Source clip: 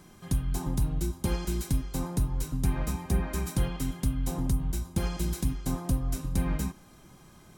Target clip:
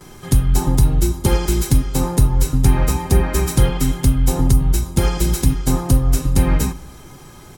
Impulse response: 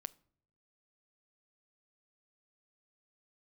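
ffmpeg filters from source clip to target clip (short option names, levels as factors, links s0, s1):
-filter_complex "[0:a]asplit=2[s0][s1];[s1]aecho=1:1:2.3:0.32[s2];[1:a]atrim=start_sample=2205,adelay=8[s3];[s2][s3]afir=irnorm=-1:irlink=0,volume=8.41[s4];[s0][s4]amix=inputs=2:normalize=0,volume=0.841"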